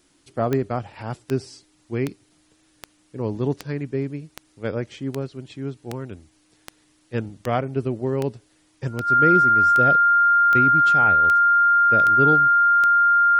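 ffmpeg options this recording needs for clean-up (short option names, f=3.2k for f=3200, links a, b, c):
-af "adeclick=t=4,bandreject=f=1.4k:w=30"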